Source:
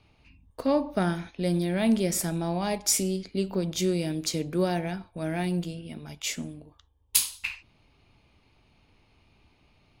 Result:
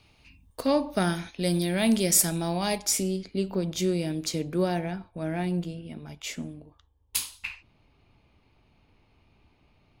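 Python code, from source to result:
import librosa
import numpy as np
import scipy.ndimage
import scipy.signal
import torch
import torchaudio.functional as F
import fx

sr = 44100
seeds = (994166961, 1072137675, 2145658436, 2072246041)

y = fx.high_shelf(x, sr, hz=2900.0, db=fx.steps((0.0, 10.0), (2.84, -2.0), (4.85, -7.0)))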